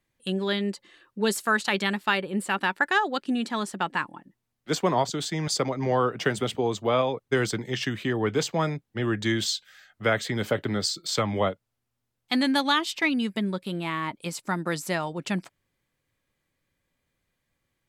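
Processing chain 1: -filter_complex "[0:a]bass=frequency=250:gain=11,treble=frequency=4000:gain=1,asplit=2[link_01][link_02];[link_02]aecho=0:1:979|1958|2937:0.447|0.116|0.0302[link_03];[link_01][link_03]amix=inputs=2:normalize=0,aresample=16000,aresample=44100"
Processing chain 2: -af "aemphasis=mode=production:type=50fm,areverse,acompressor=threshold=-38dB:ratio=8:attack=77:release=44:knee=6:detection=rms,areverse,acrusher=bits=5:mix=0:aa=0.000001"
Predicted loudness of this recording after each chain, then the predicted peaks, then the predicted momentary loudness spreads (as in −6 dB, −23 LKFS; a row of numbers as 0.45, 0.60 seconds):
−23.0, −34.5 LKFS; −7.0, −20.5 dBFS; 10, 5 LU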